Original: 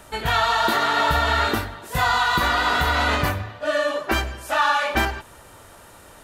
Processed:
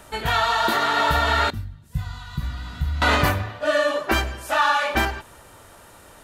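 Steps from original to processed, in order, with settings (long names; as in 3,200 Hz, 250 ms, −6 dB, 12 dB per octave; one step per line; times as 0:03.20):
0:01.50–0:03.02: drawn EQ curve 150 Hz 0 dB, 420 Hz −27 dB, 870 Hz −27 dB, 4,900 Hz −19 dB
speech leveller within 4 dB 2 s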